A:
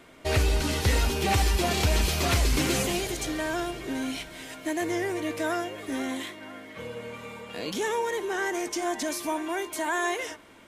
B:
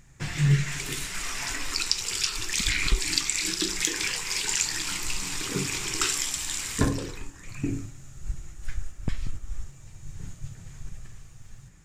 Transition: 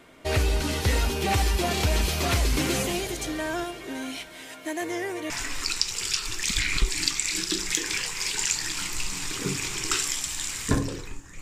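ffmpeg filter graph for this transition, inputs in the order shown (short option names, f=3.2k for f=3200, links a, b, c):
-filter_complex "[0:a]asettb=1/sr,asplit=3[a][b][c];[a]atrim=end=3.644[d];[b]atrim=start=3.64:end=5.3,asetpts=PTS-STARTPTS,afade=t=in:d=0.004:c=qsin,afade=t=out:st=1.656:d=0.004:c=qsin,lowshelf=f=230:g=-8.5[e];[c]atrim=start=5.296[f];[d][e]acrossfade=d=0.004:c1=hsin:c2=qsin[g];[g][f]acrossfade=d=0.004:c1=qsin:c2=hsin,apad=whole_dur=11.41,atrim=end=11.41,atrim=end=5.302[h];[1:a]atrim=start=1.398:end=7.51[i];[h][i]acrossfade=d=0.004:c1=hsin:c2=hsin"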